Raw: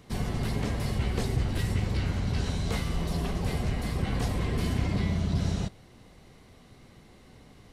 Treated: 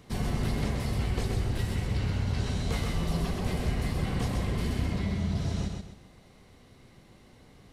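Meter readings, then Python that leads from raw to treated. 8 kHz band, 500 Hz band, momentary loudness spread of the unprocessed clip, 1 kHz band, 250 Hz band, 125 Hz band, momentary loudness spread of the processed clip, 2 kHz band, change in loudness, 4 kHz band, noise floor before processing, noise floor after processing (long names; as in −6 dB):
−1.0 dB, −1.0 dB, 3 LU, −1.0 dB, −0.5 dB, −1.0 dB, 1 LU, −1.0 dB, −1.0 dB, −1.0 dB, −54 dBFS, −56 dBFS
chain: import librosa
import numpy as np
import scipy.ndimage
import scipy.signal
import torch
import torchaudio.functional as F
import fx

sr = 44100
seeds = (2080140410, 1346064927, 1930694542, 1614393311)

p1 = fx.rider(x, sr, range_db=10, speed_s=0.5)
p2 = p1 + fx.echo_feedback(p1, sr, ms=129, feedback_pct=33, wet_db=-4.0, dry=0)
y = p2 * 10.0 ** (-2.5 / 20.0)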